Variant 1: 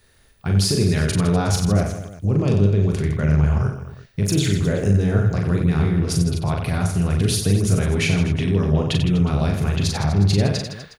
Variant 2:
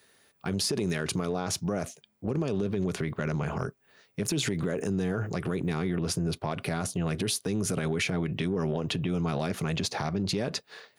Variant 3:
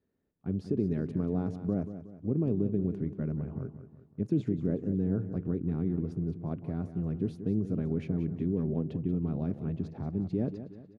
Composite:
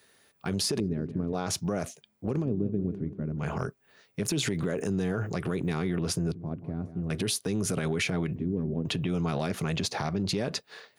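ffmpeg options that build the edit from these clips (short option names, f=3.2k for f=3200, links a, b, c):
-filter_complex "[2:a]asplit=4[a][b][c][d];[1:a]asplit=5[e][f][g][h][i];[e]atrim=end=0.802[j];[a]atrim=start=0.798:end=1.332[k];[f]atrim=start=1.328:end=2.46[l];[b]atrim=start=2.4:end=3.44[m];[g]atrim=start=3.38:end=6.322[n];[c]atrim=start=6.318:end=7.102[o];[h]atrim=start=7.098:end=8.362[p];[d]atrim=start=8.358:end=8.852[q];[i]atrim=start=8.848[r];[j][k]acrossfade=d=0.004:c1=hsin:c2=hsin[s];[s][l]acrossfade=d=0.004:c1=hsin:c2=hsin[t];[t][m]acrossfade=d=0.06:c1=tri:c2=tri[u];[u][n]acrossfade=d=0.06:c1=tri:c2=tri[v];[v][o]acrossfade=d=0.004:c1=hsin:c2=hsin[w];[w][p]acrossfade=d=0.004:c1=hsin:c2=hsin[x];[x][q]acrossfade=d=0.004:c1=hsin:c2=hsin[y];[y][r]acrossfade=d=0.004:c1=hsin:c2=hsin"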